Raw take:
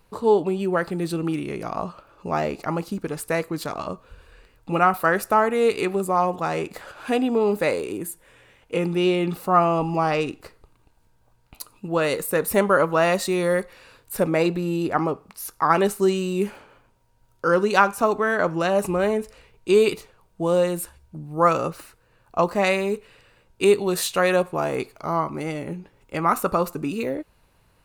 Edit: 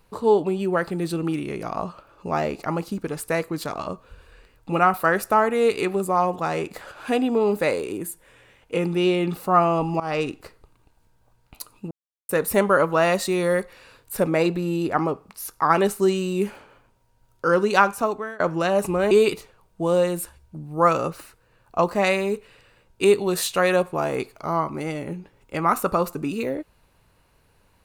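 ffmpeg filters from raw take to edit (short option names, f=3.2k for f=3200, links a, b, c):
-filter_complex "[0:a]asplit=6[a][b][c][d][e][f];[a]atrim=end=10,asetpts=PTS-STARTPTS,afade=t=out:st=9.996:d=0.004:c=hsin:silence=0.125893[g];[b]atrim=start=10:end=11.91,asetpts=PTS-STARTPTS,afade=t=in:d=0.27:c=qsin:silence=0.125893,afade=t=out:st=1.906:d=0.004:c=hsin[h];[c]atrim=start=11.91:end=12.29,asetpts=PTS-STARTPTS,volume=0[i];[d]atrim=start=12.29:end=18.4,asetpts=PTS-STARTPTS,afade=t=in:d=0.004:c=hsin,afade=t=out:st=5.61:d=0.5:silence=0.0707946[j];[e]atrim=start=18.4:end=19.112,asetpts=PTS-STARTPTS,afade=t=in:d=0.004:c=hsin:silence=0.0707946[k];[f]atrim=start=19.708[l];[g][h][i][j][k]concat=n=5:v=0:a=1[m];[m][l]acrossfade=d=0.004:c1=hsin:c2=hsin"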